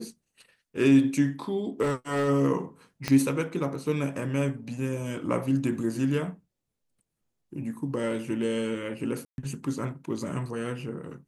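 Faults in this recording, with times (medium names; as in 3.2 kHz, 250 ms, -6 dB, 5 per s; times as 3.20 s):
1.82–2.29 s: clipped -22.5 dBFS
3.08 s: pop -13 dBFS
9.25–9.38 s: dropout 131 ms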